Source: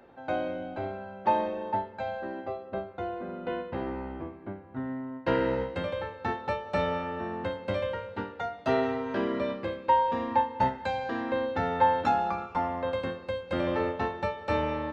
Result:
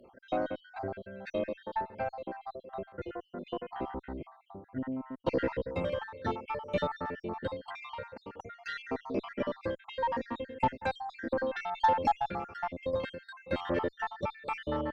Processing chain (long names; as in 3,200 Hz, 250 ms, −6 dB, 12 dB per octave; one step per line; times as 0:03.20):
time-frequency cells dropped at random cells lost 60%
harmonic generator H 6 −27 dB, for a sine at −15 dBFS
0:11.32–0:11.82: transient designer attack −2 dB, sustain +4 dB